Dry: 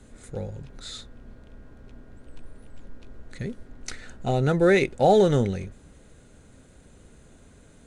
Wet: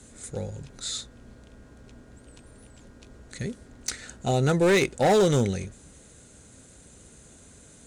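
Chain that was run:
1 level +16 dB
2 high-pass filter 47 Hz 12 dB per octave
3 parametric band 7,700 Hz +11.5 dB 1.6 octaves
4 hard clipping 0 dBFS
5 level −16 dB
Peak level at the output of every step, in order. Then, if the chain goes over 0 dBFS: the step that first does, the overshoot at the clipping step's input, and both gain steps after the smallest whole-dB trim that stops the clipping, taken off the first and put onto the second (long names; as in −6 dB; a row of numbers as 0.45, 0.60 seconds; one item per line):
+8.0, +8.0, +9.0, 0.0, −16.0 dBFS
step 1, 9.0 dB
step 1 +7 dB, step 5 −7 dB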